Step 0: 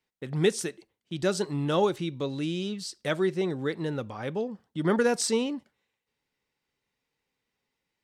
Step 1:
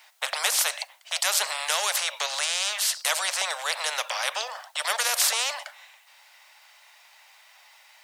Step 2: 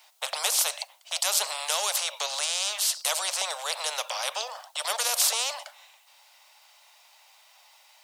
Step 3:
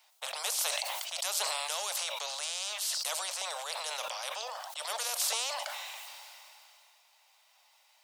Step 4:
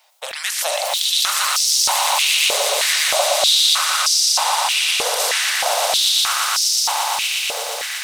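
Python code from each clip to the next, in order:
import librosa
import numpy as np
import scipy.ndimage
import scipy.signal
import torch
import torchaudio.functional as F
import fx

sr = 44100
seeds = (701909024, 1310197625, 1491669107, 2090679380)

y1 = scipy.signal.sosfilt(scipy.signal.butter(16, 600.0, 'highpass', fs=sr, output='sos'), x)
y1 = fx.spectral_comp(y1, sr, ratio=4.0)
y1 = y1 * librosa.db_to_amplitude(8.0)
y2 = fx.peak_eq(y1, sr, hz=1800.0, db=-9.0, octaves=0.9)
y3 = fx.sustainer(y2, sr, db_per_s=20.0)
y3 = y3 * librosa.db_to_amplitude(-8.5)
y4 = fx.echo_swell(y3, sr, ms=118, loudest=8, wet_db=-5)
y4 = fx.filter_held_highpass(y4, sr, hz=3.2, low_hz=440.0, high_hz=5200.0)
y4 = y4 * librosa.db_to_amplitude(7.5)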